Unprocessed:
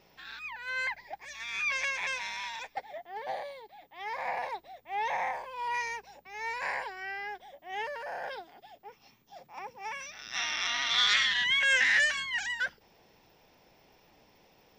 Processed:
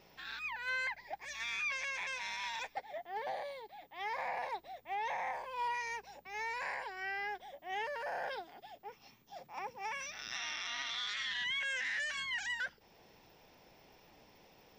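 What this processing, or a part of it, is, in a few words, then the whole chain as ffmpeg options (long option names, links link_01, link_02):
stacked limiters: -af "alimiter=limit=-19.5dB:level=0:latency=1:release=109,alimiter=level_in=2dB:limit=-24dB:level=0:latency=1:release=428,volume=-2dB,alimiter=level_in=5.5dB:limit=-24dB:level=0:latency=1:release=235,volume=-5.5dB"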